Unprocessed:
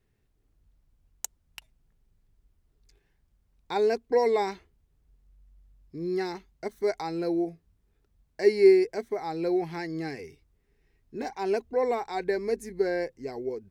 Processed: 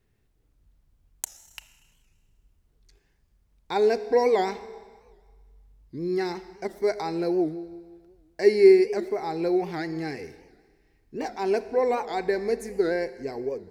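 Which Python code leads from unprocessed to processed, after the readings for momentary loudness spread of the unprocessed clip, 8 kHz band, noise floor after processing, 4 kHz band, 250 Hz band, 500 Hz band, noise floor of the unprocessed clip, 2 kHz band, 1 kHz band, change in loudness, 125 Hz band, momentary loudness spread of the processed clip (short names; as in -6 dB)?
15 LU, n/a, -67 dBFS, +2.5 dB, +3.0 dB, +3.0 dB, -71 dBFS, +2.5 dB, +3.0 dB, +2.5 dB, +2.5 dB, 16 LU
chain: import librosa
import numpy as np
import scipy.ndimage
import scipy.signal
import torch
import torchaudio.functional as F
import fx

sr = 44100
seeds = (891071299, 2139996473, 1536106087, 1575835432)

y = fx.rev_schroeder(x, sr, rt60_s=1.6, comb_ms=26, drr_db=13.0)
y = fx.record_warp(y, sr, rpm=78.0, depth_cents=160.0)
y = y * librosa.db_to_amplitude(2.5)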